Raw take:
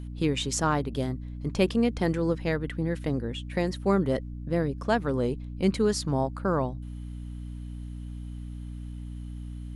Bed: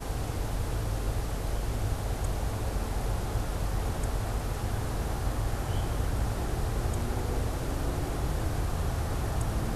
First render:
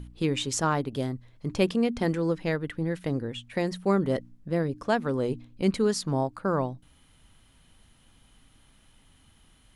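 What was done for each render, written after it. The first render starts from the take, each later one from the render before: de-hum 60 Hz, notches 5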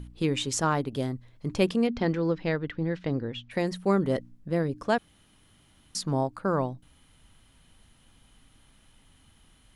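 1.87–3.51 s: low-pass 5.4 kHz 24 dB/octave; 4.98–5.95 s: room tone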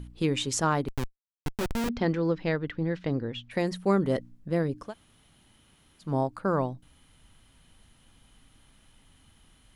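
0.88–1.89 s: Schmitt trigger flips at -24.5 dBFS; 4.86–6.07 s: room tone, crossfade 0.16 s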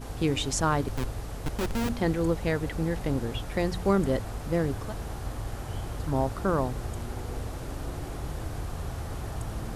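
add bed -4.5 dB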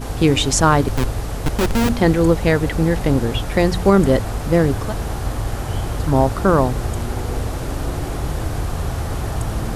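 trim +11.5 dB; peak limiter -2 dBFS, peak gain reduction 3 dB

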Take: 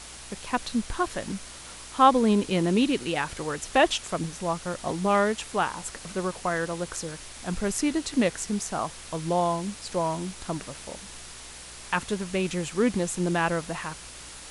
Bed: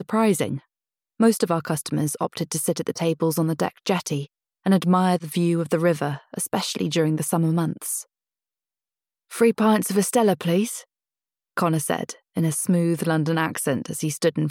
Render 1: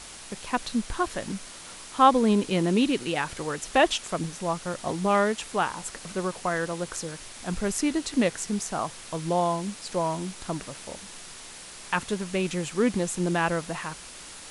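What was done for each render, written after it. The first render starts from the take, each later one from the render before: de-hum 60 Hz, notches 2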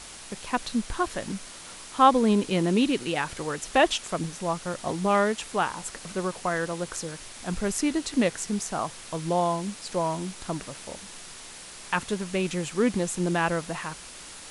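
no audible change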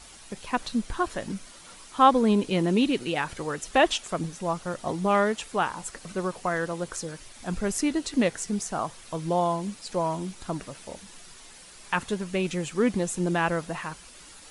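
noise reduction 8 dB, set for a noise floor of -44 dBFS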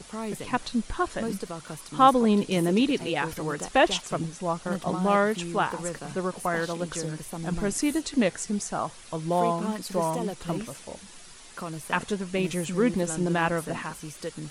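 add bed -14.5 dB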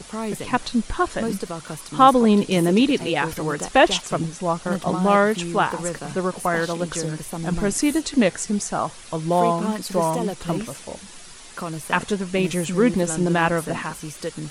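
trim +5.5 dB; peak limiter -2 dBFS, peak gain reduction 1.5 dB

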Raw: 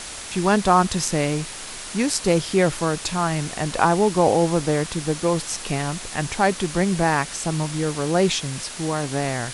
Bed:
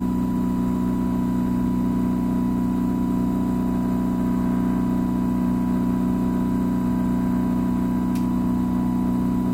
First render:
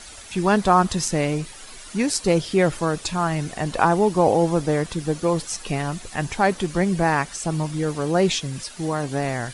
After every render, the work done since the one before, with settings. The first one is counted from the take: noise reduction 11 dB, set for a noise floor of -35 dBFS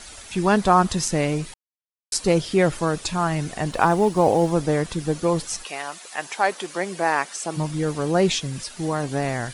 1.54–2.12 s: mute; 3.71–4.53 s: companding laws mixed up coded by A; 5.63–7.56 s: high-pass 740 Hz -> 320 Hz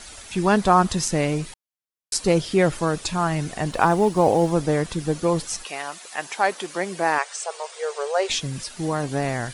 7.18–8.30 s: brick-wall FIR band-pass 390–9600 Hz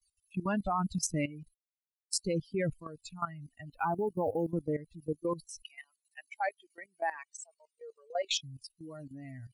expander on every frequency bin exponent 3; level held to a coarse grid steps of 15 dB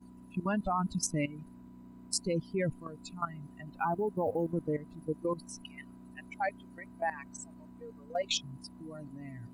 add bed -30.5 dB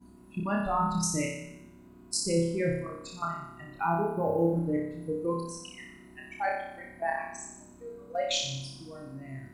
flutter echo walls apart 5.1 m, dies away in 0.83 s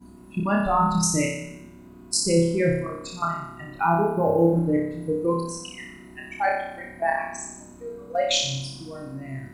trim +7 dB

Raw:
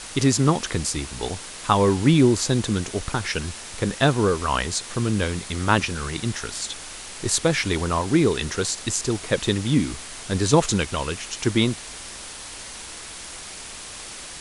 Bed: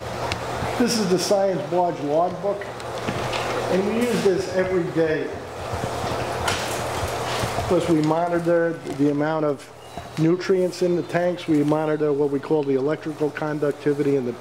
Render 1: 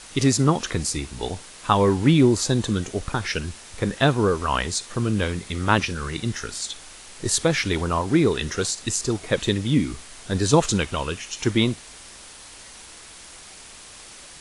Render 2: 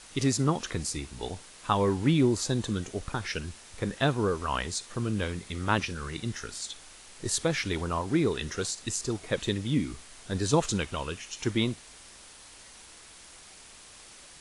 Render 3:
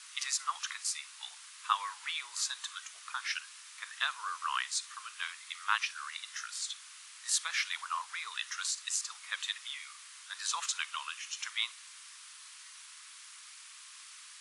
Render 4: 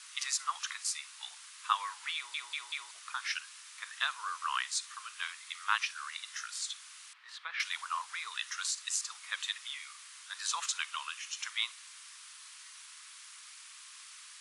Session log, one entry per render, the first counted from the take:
noise print and reduce 6 dB
trim -7 dB
elliptic high-pass 1.1 kHz, stop band 80 dB
2.15 s: stutter in place 0.19 s, 4 plays; 7.13–7.60 s: distance through air 380 m

